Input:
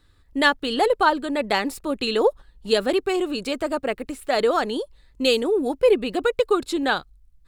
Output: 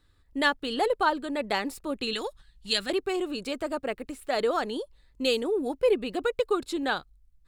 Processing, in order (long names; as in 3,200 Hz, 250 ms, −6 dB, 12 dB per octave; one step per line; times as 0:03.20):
0:02.13–0:02.90: graphic EQ with 10 bands 125 Hz +4 dB, 250 Hz −4 dB, 500 Hz −11 dB, 1,000 Hz −4 dB, 2,000 Hz +4 dB, 4,000 Hz +6 dB, 8,000 Hz +6 dB
level −6 dB